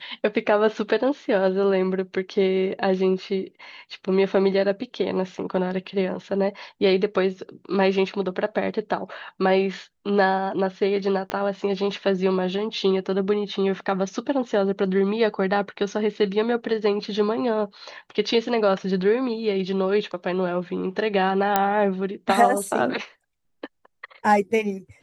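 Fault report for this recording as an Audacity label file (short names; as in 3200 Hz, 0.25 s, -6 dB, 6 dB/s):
11.300000	11.300000	pop -13 dBFS
21.560000	21.560000	pop -4 dBFS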